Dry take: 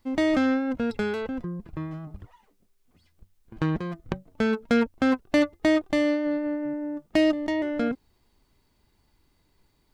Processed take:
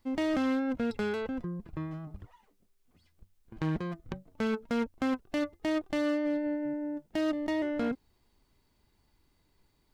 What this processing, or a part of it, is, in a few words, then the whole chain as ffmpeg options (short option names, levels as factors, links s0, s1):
limiter into clipper: -filter_complex "[0:a]asettb=1/sr,asplit=3[s0][s1][s2];[s0]atrim=end=6.264[s3];[s1]atrim=start=6.26:end=7.19,asetpts=PTS-STARTPTS,afade=t=in:d=0.004:c=qsin,afade=t=out:st=0.926:d=0.004:c=qsin,bandreject=f=1200:w=5.5[s4];[s2]atrim=start=7.186[s5];[s3][s4]acrossfade=d=0.004:c1=hsin:c2=qsin[s6];[s6][s5]acrossfade=d=0.004:c1=qsin:c2=hsin,alimiter=limit=0.15:level=0:latency=1:release=53,asoftclip=type=hard:threshold=0.0841,volume=0.668"